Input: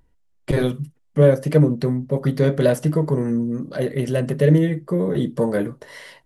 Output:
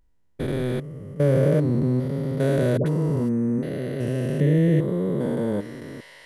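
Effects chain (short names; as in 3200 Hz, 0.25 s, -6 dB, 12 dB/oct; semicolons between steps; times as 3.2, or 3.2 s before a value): stepped spectrum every 0.4 s; 2.77–3.63 dispersion highs, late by 89 ms, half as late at 730 Hz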